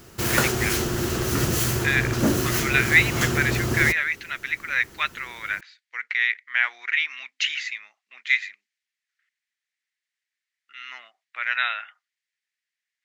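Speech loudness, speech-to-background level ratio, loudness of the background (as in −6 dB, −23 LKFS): −24.0 LKFS, 0.0 dB, −24.0 LKFS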